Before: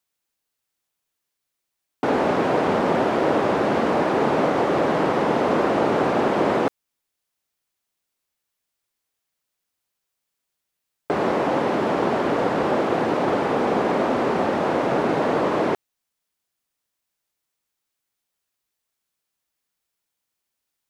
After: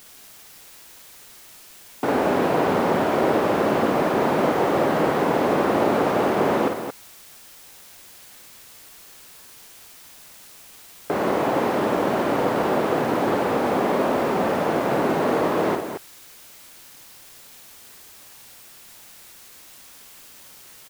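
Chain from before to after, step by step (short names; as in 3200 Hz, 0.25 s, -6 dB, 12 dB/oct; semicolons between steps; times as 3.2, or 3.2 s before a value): in parallel at -6.5 dB: requantised 6-bit, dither triangular; on the sum: loudspeakers at several distances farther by 18 m -6 dB, 77 m -8 dB; gain -5 dB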